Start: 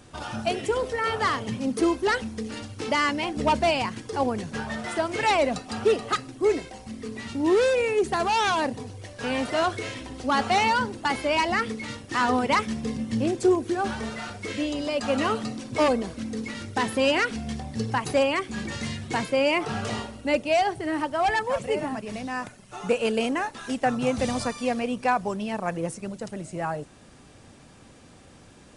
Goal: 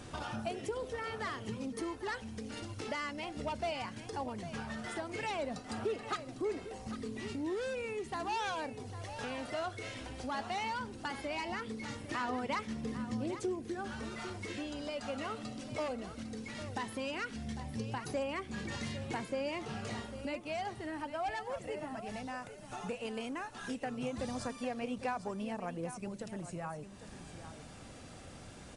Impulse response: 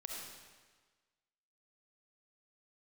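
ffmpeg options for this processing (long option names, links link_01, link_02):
-filter_complex "[0:a]acompressor=threshold=-44dB:ratio=2.5,aphaser=in_gain=1:out_gain=1:delay=1.5:decay=0.24:speed=0.16:type=sinusoidal,asplit=2[link_01][link_02];[link_02]aecho=0:1:802:0.251[link_03];[link_01][link_03]amix=inputs=2:normalize=0"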